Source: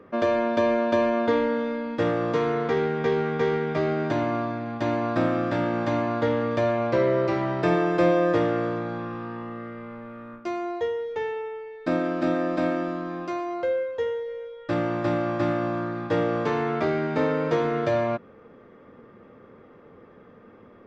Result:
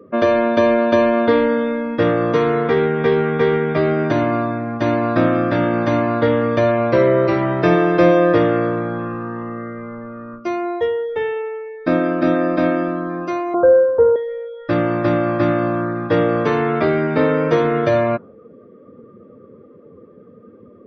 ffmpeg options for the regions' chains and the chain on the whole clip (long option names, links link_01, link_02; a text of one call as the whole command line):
ffmpeg -i in.wav -filter_complex "[0:a]asettb=1/sr,asplit=3[link_01][link_02][link_03];[link_01]atrim=end=13.544[link_04];[link_02]atrim=start=13.54:end=14.16,asetpts=PTS-STARTPTS,afade=type=in:duration=0.004:curve=qsin,afade=type=out:start_time=0.616:duration=0.004:curve=qsin,asuperstop=centerf=3600:order=20:qfactor=0.6,highshelf=frequency=2400:gain=-10.5,acontrast=88[link_05];[link_03]atrim=start=14.156[link_06];[link_04][link_05]acrossfade=duration=0.004:curve1=hsin:curve2=qsin[link_07];[link_07][link_06]acrossfade=duration=0.004:curve1=qsin:curve2=hsin,afftdn=noise_reduction=18:noise_floor=-46,equalizer=frequency=840:width_type=o:width=0.3:gain=-5,volume=8dB" out.wav